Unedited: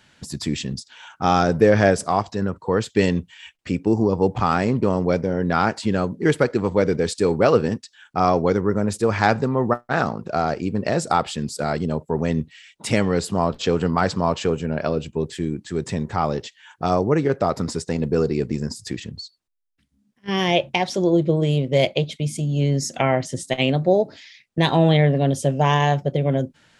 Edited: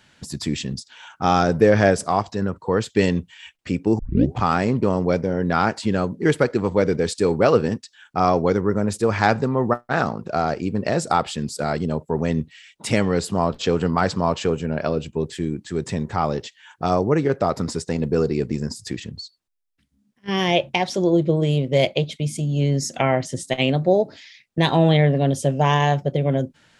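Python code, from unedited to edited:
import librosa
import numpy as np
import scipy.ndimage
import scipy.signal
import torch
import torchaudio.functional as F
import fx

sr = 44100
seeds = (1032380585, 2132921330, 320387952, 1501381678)

y = fx.edit(x, sr, fx.tape_start(start_s=3.99, length_s=0.37), tone=tone)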